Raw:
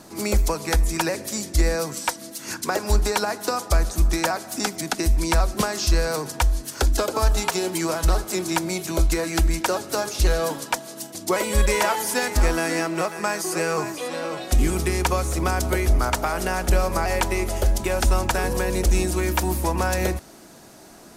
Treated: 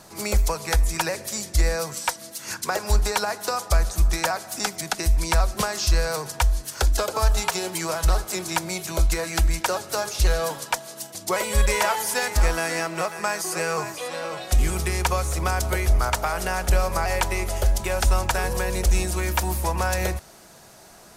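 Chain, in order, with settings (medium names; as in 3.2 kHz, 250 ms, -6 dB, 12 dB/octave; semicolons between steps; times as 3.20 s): peaking EQ 280 Hz -11.5 dB 0.82 oct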